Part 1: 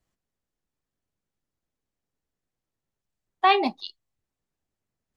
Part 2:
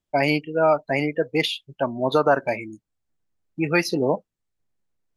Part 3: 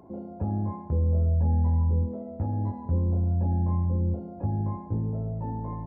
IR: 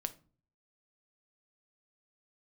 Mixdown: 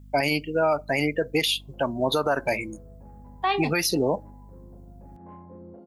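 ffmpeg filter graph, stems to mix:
-filter_complex "[0:a]aeval=exprs='val(0)+0.00794*(sin(2*PI*50*n/s)+sin(2*PI*2*50*n/s)/2+sin(2*PI*3*50*n/s)/3+sin(2*PI*4*50*n/s)/4+sin(2*PI*5*50*n/s)/5)':c=same,volume=0.668,asplit=2[s0][s1];[1:a]aemphasis=mode=production:type=75kf,volume=0.944,asplit=2[s2][s3];[s3]volume=0.112[s4];[2:a]highpass=300,asoftclip=type=tanh:threshold=0.0335,adelay=1600,volume=0.531[s5];[s1]apad=whole_len=329210[s6];[s5][s6]sidechaincompress=threshold=0.00251:ratio=8:attack=27:release=171[s7];[3:a]atrim=start_sample=2205[s8];[s4][s8]afir=irnorm=-1:irlink=0[s9];[s0][s2][s7][s9]amix=inputs=4:normalize=0,alimiter=limit=0.211:level=0:latency=1:release=65"

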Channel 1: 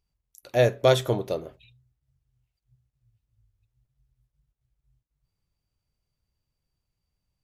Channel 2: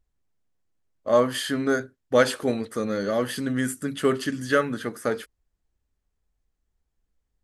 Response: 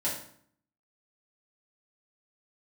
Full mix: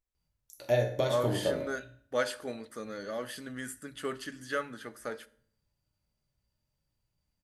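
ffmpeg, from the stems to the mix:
-filter_complex "[0:a]acompressor=threshold=0.0562:ratio=6,adelay=150,volume=0.531,asplit=2[s0][s1];[s1]volume=0.596[s2];[1:a]lowshelf=f=410:g=-8.5,volume=0.316,asplit=2[s3][s4];[s4]volume=0.1[s5];[2:a]atrim=start_sample=2205[s6];[s2][s5]amix=inputs=2:normalize=0[s7];[s7][s6]afir=irnorm=-1:irlink=0[s8];[s0][s3][s8]amix=inputs=3:normalize=0"

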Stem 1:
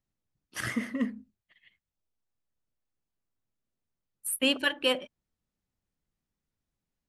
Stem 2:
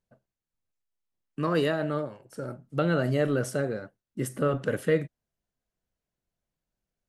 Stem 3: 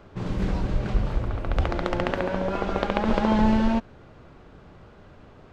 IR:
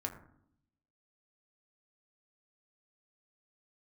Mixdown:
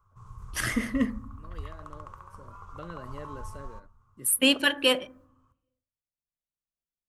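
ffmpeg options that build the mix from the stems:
-filter_complex "[0:a]agate=range=0.0224:threshold=0.001:ratio=3:detection=peak,volume=1.12,asplit=3[s0][s1][s2];[s1]volume=0.355[s3];[1:a]volume=0.133[s4];[2:a]firequalizer=gain_entry='entry(120,0);entry(230,-28);entry(420,-16);entry(640,-23);entry(1100,9);entry(1700,-17);entry(2900,-17);entry(4300,-16);entry(6100,-4);entry(9500,3)':delay=0.05:min_phase=1,volume=0.126,asplit=2[s5][s6];[s6]volume=0.422[s7];[s2]apad=whole_len=312663[s8];[s4][s8]sidechaincompress=threshold=0.0141:ratio=8:attack=39:release=1190[s9];[3:a]atrim=start_sample=2205[s10];[s3][s7]amix=inputs=2:normalize=0[s11];[s11][s10]afir=irnorm=-1:irlink=0[s12];[s0][s9][s5][s12]amix=inputs=4:normalize=0,highshelf=f=5200:g=5.5"

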